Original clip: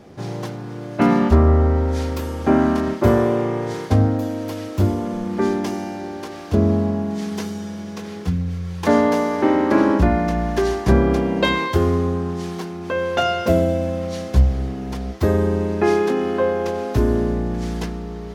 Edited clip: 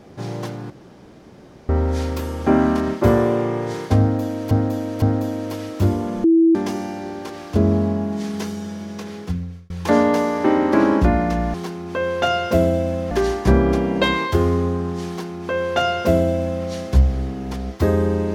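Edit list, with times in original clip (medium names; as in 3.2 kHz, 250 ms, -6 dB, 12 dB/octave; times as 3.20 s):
0.70–1.69 s: room tone
4.00–4.51 s: loop, 3 plays
5.22–5.53 s: bleep 329 Hz -10 dBFS
7.92–8.68 s: fade out equal-power
12.49–14.06 s: copy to 10.52 s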